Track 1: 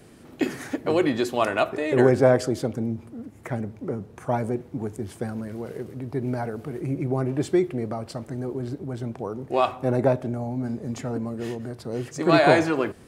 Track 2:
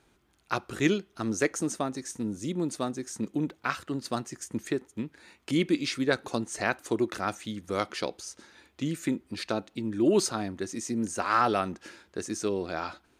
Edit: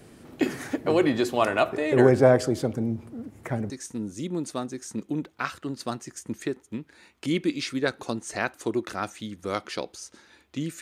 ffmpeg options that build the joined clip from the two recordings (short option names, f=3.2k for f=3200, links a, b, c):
-filter_complex "[0:a]apad=whole_dur=10.81,atrim=end=10.81,atrim=end=3.702[a];[1:a]atrim=start=1.948:end=9.06[b];[a][b]acrossfade=d=0.004:c1=hsin:c2=hsin"